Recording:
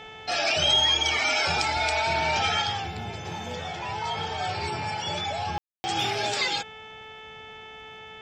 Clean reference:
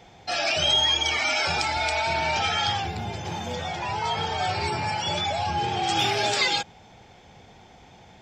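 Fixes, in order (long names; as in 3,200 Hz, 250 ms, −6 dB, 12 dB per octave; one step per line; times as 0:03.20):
click removal
hum removal 437.2 Hz, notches 8
ambience match 0:05.58–0:05.84
level correction +3.5 dB, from 0:02.62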